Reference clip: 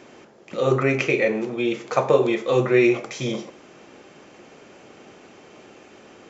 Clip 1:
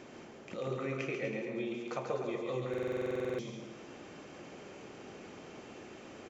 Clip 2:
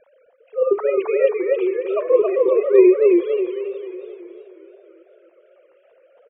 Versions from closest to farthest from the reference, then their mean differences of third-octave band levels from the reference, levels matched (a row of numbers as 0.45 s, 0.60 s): 1, 2; 8.5 dB, 12.0 dB